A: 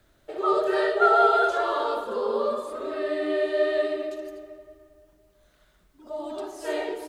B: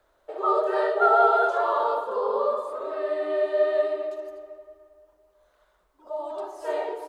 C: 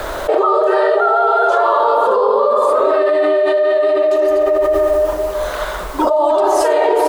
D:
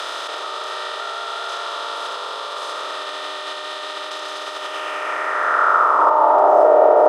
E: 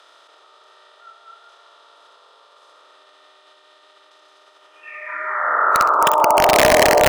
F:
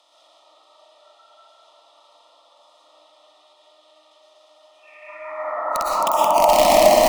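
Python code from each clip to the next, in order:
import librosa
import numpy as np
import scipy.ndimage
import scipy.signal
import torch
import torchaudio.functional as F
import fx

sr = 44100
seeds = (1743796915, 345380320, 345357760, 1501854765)

y1 = fx.graphic_eq(x, sr, hz=(125, 250, 500, 1000), db=(-10, -6, 9, 12))
y1 = F.gain(torch.from_numpy(y1), -8.0).numpy()
y2 = fx.env_flatten(y1, sr, amount_pct=100)
y2 = F.gain(torch.from_numpy(y2), 3.0).numpy()
y3 = fx.bin_compress(y2, sr, power=0.2)
y3 = fx.filter_sweep_bandpass(y3, sr, from_hz=3600.0, to_hz=650.0, start_s=4.54, end_s=6.65, q=3.1)
y3 = F.gain(torch.from_numpy(y3), -1.5).numpy()
y4 = (np.mod(10.0 ** (4.5 / 20.0) * y3 + 1.0, 2.0) - 1.0) / 10.0 ** (4.5 / 20.0)
y4 = fx.noise_reduce_blind(y4, sr, reduce_db=22)
y4 = fx.room_flutter(y4, sr, wall_m=11.0, rt60_s=0.3)
y4 = F.gain(torch.from_numpy(y4), -1.0).numpy()
y5 = fx.fixed_phaser(y4, sr, hz=420.0, stages=6)
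y5 = fx.rev_freeverb(y5, sr, rt60_s=1.4, hf_ratio=0.5, predelay_ms=80, drr_db=-4.5)
y5 = F.gain(torch.from_numpy(y5), -5.0).numpy()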